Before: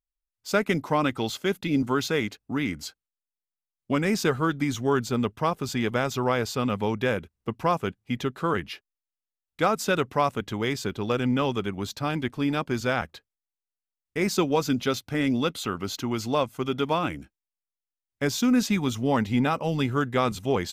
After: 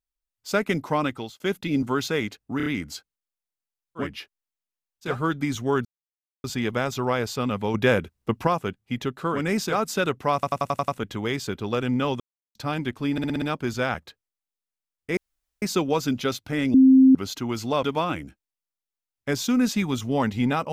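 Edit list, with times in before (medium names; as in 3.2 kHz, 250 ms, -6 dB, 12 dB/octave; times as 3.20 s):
0.89–1.40 s: fade out equal-power
2.57 s: stutter 0.03 s, 4 plays
3.94–4.28 s: swap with 8.56–9.62 s, crossfade 0.16 s
5.04–5.63 s: mute
6.93–7.66 s: gain +5.5 dB
10.25 s: stutter 0.09 s, 7 plays
11.57–11.92 s: mute
12.49 s: stutter 0.06 s, 6 plays
14.24 s: insert room tone 0.45 s
15.36–15.77 s: bleep 263 Hz -10 dBFS
16.45–16.77 s: delete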